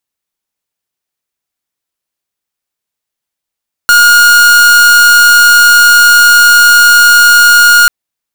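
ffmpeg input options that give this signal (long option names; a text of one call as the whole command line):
ffmpeg -f lavfi -i "aevalsrc='0.631*(2*lt(mod(1430*t,1),0.45)-1)':duration=3.99:sample_rate=44100" out.wav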